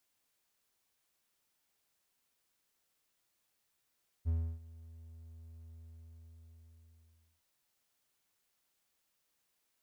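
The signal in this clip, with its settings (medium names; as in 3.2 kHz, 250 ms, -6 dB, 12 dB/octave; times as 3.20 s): ADSR triangle 81.8 Hz, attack 33 ms, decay 305 ms, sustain -21.5 dB, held 1.47 s, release 1700 ms -26 dBFS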